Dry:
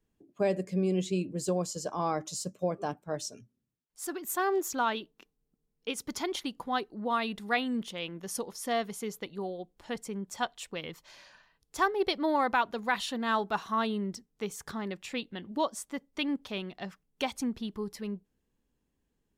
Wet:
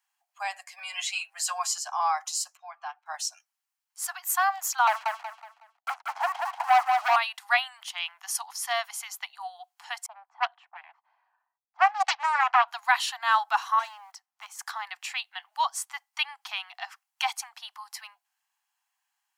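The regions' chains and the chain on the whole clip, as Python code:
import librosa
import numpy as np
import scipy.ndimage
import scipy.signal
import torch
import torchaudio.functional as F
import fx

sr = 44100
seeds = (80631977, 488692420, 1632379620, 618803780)

y = fx.chain(x, sr, fx.peak_eq(hz=1900.0, db=6.5, octaves=1.5),
    fx.comb(ms=7.4, depth=0.9), at=(0.78, 1.78))
y = fx.chain(y, sr, fx.highpass(hz=1500.0, slope=6),
    fx.air_absorb(metres=260.0), at=(2.57, 3.06))
y = fx.chain(y, sr, fx.lowpass_res(hz=590.0, q=2.4),
    fx.leveller(passes=3),
    fx.echo_feedback(ms=185, feedback_pct=35, wet_db=-4.0), at=(4.87, 7.16))
y = fx.chain(y, sr, fx.env_lowpass(base_hz=320.0, full_db=-23.5),
    fx.air_absorb(metres=75.0),
    fx.doppler_dist(depth_ms=0.76), at=(10.06, 12.68))
y = fx.chain(y, sr, fx.block_float(bits=7),
    fx.clip_hard(threshold_db=-30.5),
    fx.high_shelf(hz=2300.0, db=-10.5), at=(13.79, 14.59))
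y = scipy.signal.sosfilt(scipy.signal.butter(16, 730.0, 'highpass', fs=sr, output='sos'), y)
y = fx.notch(y, sr, hz=3600.0, q=12.0)
y = F.gain(torch.from_numpy(y), 7.5).numpy()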